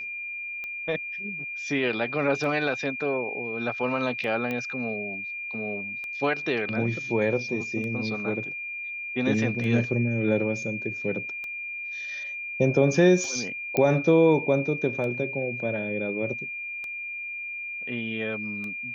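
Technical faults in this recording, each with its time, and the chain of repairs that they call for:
scratch tick 33 1/3 rpm −24 dBFS
whistle 2,400 Hz −32 dBFS
0:04.51: click −18 dBFS
0:13.77: click −12 dBFS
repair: click removal
notch filter 2,400 Hz, Q 30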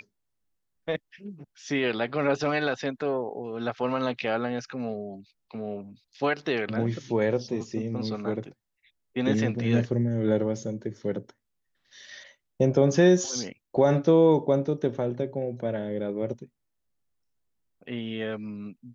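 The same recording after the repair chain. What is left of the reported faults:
none of them is left

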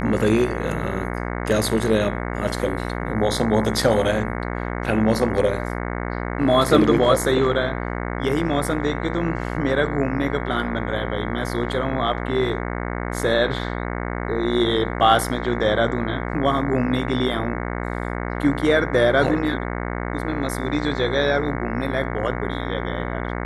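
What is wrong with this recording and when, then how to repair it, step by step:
mains buzz 60 Hz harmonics 37 −27 dBFS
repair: hum removal 60 Hz, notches 37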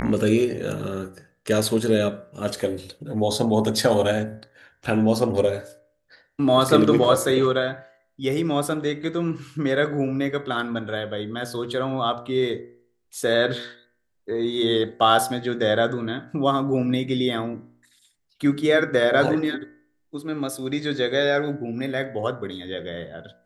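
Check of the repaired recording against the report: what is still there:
none of them is left

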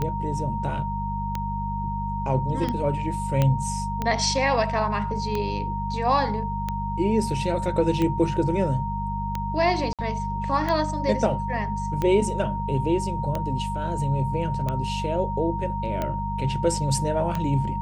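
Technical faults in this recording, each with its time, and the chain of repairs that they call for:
mains hum 50 Hz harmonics 4 −30 dBFS
scratch tick 45 rpm −14 dBFS
whistle 930 Hz −29 dBFS
0:03.42: click −10 dBFS
0:09.93–0:09.99: drop-out 57 ms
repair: click removal
hum removal 50 Hz, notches 4
notch filter 930 Hz, Q 30
repair the gap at 0:09.93, 57 ms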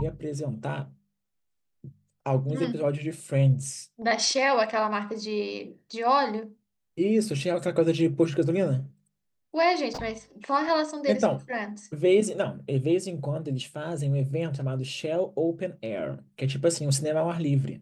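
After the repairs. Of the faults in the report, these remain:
none of them is left

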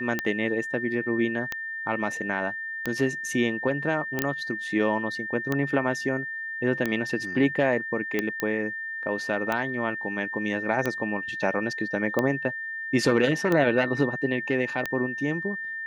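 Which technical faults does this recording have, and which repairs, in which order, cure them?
scratch tick 45 rpm −12 dBFS
whistle 1,800 Hz −31 dBFS
0:04.22: click −9 dBFS
0:08.40: click −13 dBFS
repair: click removal
notch filter 1,800 Hz, Q 30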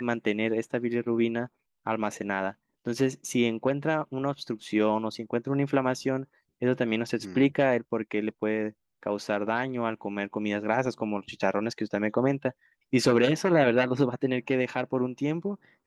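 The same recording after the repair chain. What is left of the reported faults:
none of them is left

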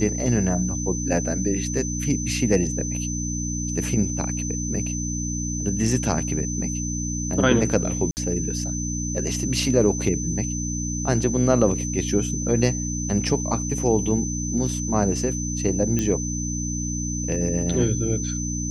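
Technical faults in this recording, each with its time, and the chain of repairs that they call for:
mains hum 60 Hz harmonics 5 −28 dBFS
whistle 6,100 Hz −30 dBFS
0:08.11–0:08.17: drop-out 59 ms
0:15.99: click −10 dBFS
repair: click removal
notch filter 6,100 Hz, Q 30
hum removal 60 Hz, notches 5
repair the gap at 0:08.11, 59 ms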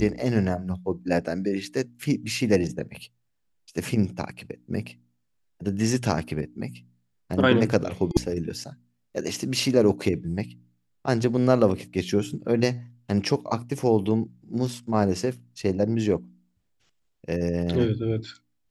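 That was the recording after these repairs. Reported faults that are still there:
none of them is left

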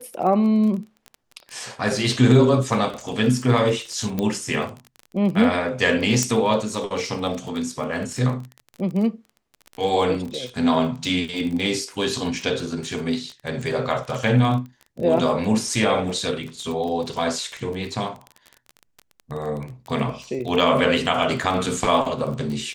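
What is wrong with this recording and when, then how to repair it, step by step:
surface crackle 24 per second −28 dBFS
0:04.19: click −11 dBFS
0:06.23: click −6 dBFS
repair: click removal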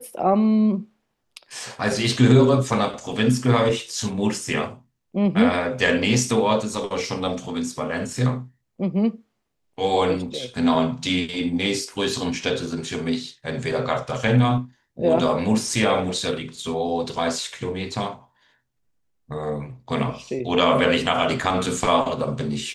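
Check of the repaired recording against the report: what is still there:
none of them is left

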